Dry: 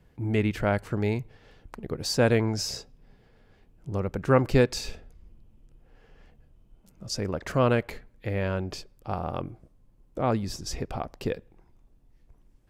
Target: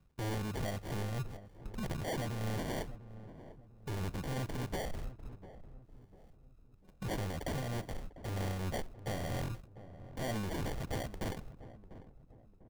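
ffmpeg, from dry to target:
-filter_complex "[0:a]aemphasis=mode=production:type=75kf,agate=range=0.112:threshold=0.00501:ratio=16:detection=peak,equalizer=f=12000:w=0.31:g=-10.5,aecho=1:1:1.1:0.75,acompressor=threshold=0.0282:ratio=5,alimiter=level_in=1.41:limit=0.0631:level=0:latency=1:release=11,volume=0.708,acrusher=samples=34:mix=1:aa=0.000001,aeval=exprs='0.02*(abs(mod(val(0)/0.02+3,4)-2)-1)':c=same,tremolo=f=3.2:d=0.44,asoftclip=type=tanh:threshold=0.0112,asplit=2[s0][s1];[s1]adelay=697,lowpass=f=840:p=1,volume=0.211,asplit=2[s2][s3];[s3]adelay=697,lowpass=f=840:p=1,volume=0.43,asplit=2[s4][s5];[s5]adelay=697,lowpass=f=840:p=1,volume=0.43,asplit=2[s6][s7];[s7]adelay=697,lowpass=f=840:p=1,volume=0.43[s8];[s0][s2][s4][s6][s8]amix=inputs=5:normalize=0,volume=2.37"

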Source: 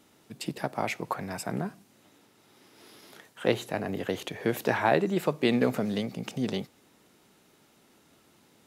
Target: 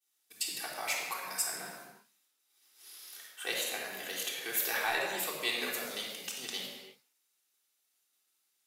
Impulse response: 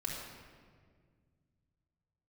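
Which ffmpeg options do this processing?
-filter_complex "[0:a]highpass=f=310:p=1,agate=range=0.0224:threshold=0.00316:ratio=3:detection=peak,aderivative,asplit=2[s0][s1];[s1]asoftclip=type=tanh:threshold=0.0224,volume=0.668[s2];[s0][s2]amix=inputs=2:normalize=0[s3];[1:a]atrim=start_sample=2205,afade=t=out:st=0.41:d=0.01,atrim=end_sample=18522[s4];[s3][s4]afir=irnorm=-1:irlink=0,volume=1.78"

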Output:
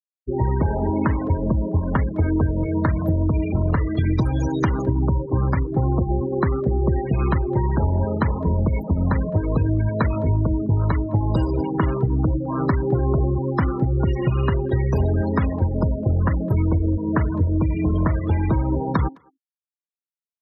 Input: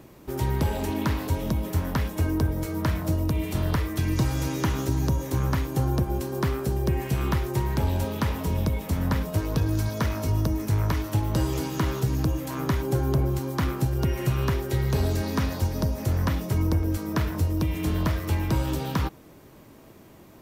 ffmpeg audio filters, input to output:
-filter_complex "[0:a]bandreject=f=135:t=h:w=4,bandreject=f=270:t=h:w=4,bandreject=f=405:t=h:w=4,bandreject=f=540:t=h:w=4,bandreject=f=675:t=h:w=4,bandreject=f=810:t=h:w=4,afftfilt=real='re*gte(hypot(re,im),0.0398)':imag='im*gte(hypot(re,im),0.0398)':win_size=1024:overlap=0.75,acompressor=threshold=0.0562:ratio=3,asplit=2[s0][s1];[s1]adelay=210,highpass=300,lowpass=3400,asoftclip=type=hard:threshold=0.0562,volume=0.0501[s2];[s0][s2]amix=inputs=2:normalize=0,volume=2.66"

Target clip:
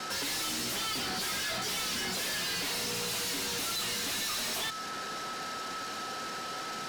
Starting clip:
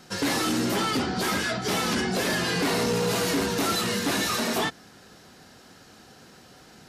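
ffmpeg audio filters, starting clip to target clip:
-filter_complex "[0:a]acrossover=split=140|2400[s0][s1][s2];[s1]acompressor=threshold=0.0158:ratio=6[s3];[s0][s3][s2]amix=inputs=3:normalize=0,aeval=exprs='val(0)+0.00224*sin(2*PI*1300*n/s)':c=same,asplit=2[s4][s5];[s5]highpass=f=720:p=1,volume=50.1,asoftclip=type=tanh:threshold=0.133[s6];[s4][s6]amix=inputs=2:normalize=0,lowpass=f=2600:p=1,volume=0.501,aemphasis=mode=production:type=cd,anlmdn=25.1,volume=0.355"

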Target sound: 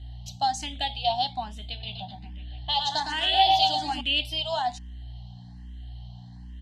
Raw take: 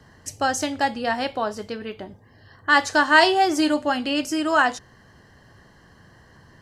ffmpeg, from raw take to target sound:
-filter_complex "[0:a]aeval=exprs='0.668*(cos(1*acos(clip(val(0)/0.668,-1,1)))-cos(1*PI/2))+0.0133*(cos(7*acos(clip(val(0)/0.668,-1,1)))-cos(7*PI/2))':c=same,tiltshelf=f=650:g=-3.5,aeval=exprs='val(0)+0.0158*(sin(2*PI*60*n/s)+sin(2*PI*2*60*n/s)/2+sin(2*PI*3*60*n/s)/3+sin(2*PI*4*60*n/s)/4+sin(2*PI*5*60*n/s)/5)':c=same,acompressor=threshold=0.141:ratio=4,firequalizer=gain_entry='entry(150,0);entry(450,-24);entry(740,7);entry(1200,-22);entry(3500,13);entry(5300,-9);entry(11000,-11)':delay=0.05:min_phase=1,asettb=1/sr,asplit=3[s0][s1][s2];[s0]atrim=end=1.724[s3];[s1]atrim=start=1.72:end=4.01,asetpts=PTS-STARTPTS,afade=t=in:d=0.004:c=qsin,afade=t=out:st=2.286:d=0.004:c=qsin,aecho=1:1:110|231|364.1|510.5|671.6:0.631|0.398|0.251|0.158|0.1,atrim=end_sample=100989[s4];[s2]atrim=start=4.006[s5];[s3][s4]acrossfade=d=0.004:c1=hsin:c2=qsin[s6];[s6][s5]acrossfade=d=0.004:c1=qsin:c2=hsin,asplit=2[s7][s8];[s8]afreqshift=1.2[s9];[s7][s9]amix=inputs=2:normalize=1"

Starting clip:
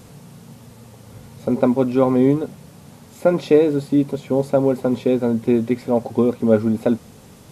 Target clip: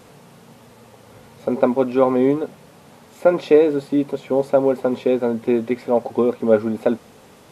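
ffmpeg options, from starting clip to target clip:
-af "bass=f=250:g=-12,treble=f=4000:g=-7,volume=1.33"

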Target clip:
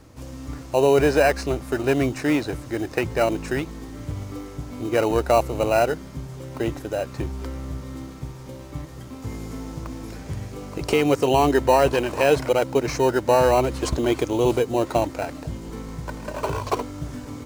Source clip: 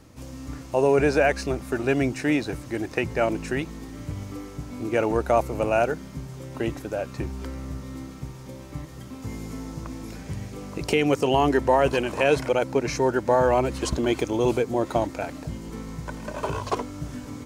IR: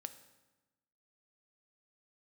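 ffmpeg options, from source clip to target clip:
-filter_complex "[0:a]equalizer=f=200:t=o:w=0.68:g=-5,asplit=2[s0][s1];[s1]acrusher=samples=13:mix=1:aa=0.000001,volume=0.447[s2];[s0][s2]amix=inputs=2:normalize=0"

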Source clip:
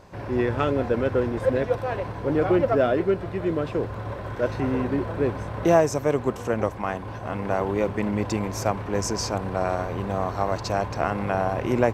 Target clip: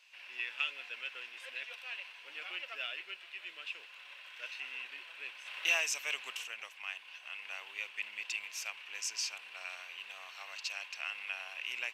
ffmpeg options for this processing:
-filter_complex "[0:a]highpass=f=2700:t=q:w=6,asplit=3[s0][s1][s2];[s0]afade=t=out:st=5.45:d=0.02[s3];[s1]acontrast=60,afade=t=in:st=5.45:d=0.02,afade=t=out:st=6.43:d=0.02[s4];[s2]afade=t=in:st=6.43:d=0.02[s5];[s3][s4][s5]amix=inputs=3:normalize=0,volume=0.398"

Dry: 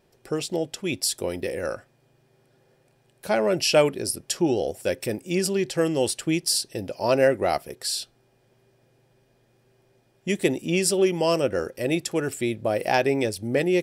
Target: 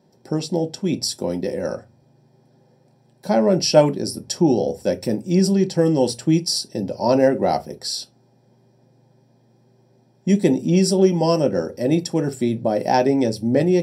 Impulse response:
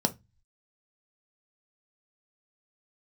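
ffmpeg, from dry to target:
-filter_complex "[1:a]atrim=start_sample=2205[s0];[0:a][s0]afir=irnorm=-1:irlink=0,volume=0.398"

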